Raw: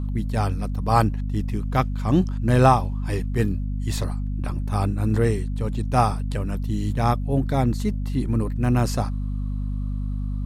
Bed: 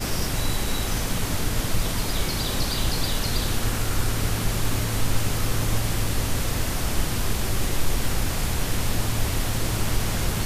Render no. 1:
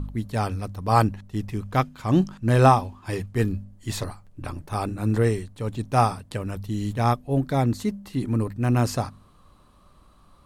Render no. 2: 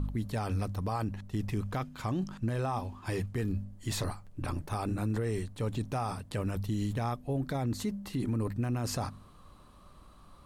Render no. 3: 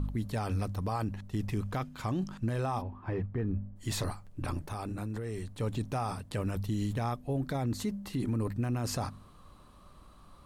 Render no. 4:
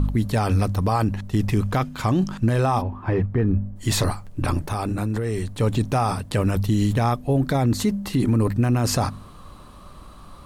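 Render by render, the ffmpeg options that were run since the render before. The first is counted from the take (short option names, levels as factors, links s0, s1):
-af "bandreject=f=50:t=h:w=4,bandreject=f=100:t=h:w=4,bandreject=f=150:t=h:w=4,bandreject=f=200:t=h:w=4,bandreject=f=250:t=h:w=4"
-af "acompressor=threshold=0.0631:ratio=3,alimiter=level_in=1.06:limit=0.0631:level=0:latency=1:release=26,volume=0.944"
-filter_complex "[0:a]asplit=3[s0][s1][s2];[s0]afade=t=out:st=2.81:d=0.02[s3];[s1]lowpass=1500,afade=t=in:st=2.81:d=0.02,afade=t=out:st=3.75:d=0.02[s4];[s2]afade=t=in:st=3.75:d=0.02[s5];[s3][s4][s5]amix=inputs=3:normalize=0,asettb=1/sr,asplit=3[s6][s7][s8];[s6]atrim=end=4.584[s9];[s7]atrim=start=4.58:end=5.55,asetpts=PTS-STARTPTS,afade=t=in:d=0.004:c=qsin,afade=t=out:st=0.966:d=0.004:c=qsin,acompressor=threshold=0.0224:ratio=6:attack=3.2:release=140:knee=1:detection=peak[s10];[s8]atrim=start=5.546[s11];[s9][s10]acrossfade=d=0.004:c1=hsin:c2=qsin[s12];[s12][s11]acrossfade=d=0.004:c1=qsin:c2=hsin"
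-af "volume=3.98"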